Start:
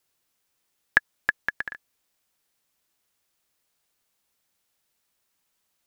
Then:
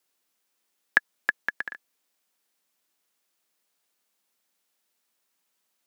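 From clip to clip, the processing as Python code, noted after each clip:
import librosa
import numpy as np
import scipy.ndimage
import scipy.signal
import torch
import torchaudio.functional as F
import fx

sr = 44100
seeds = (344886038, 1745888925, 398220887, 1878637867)

y = scipy.signal.sosfilt(scipy.signal.butter(4, 180.0, 'highpass', fs=sr, output='sos'), x)
y = y * librosa.db_to_amplitude(-1.0)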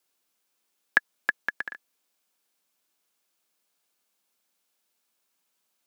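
y = fx.notch(x, sr, hz=1900.0, q=13.0)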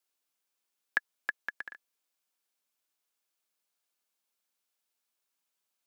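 y = fx.low_shelf(x, sr, hz=400.0, db=-5.5)
y = y * librosa.db_to_amplitude(-7.5)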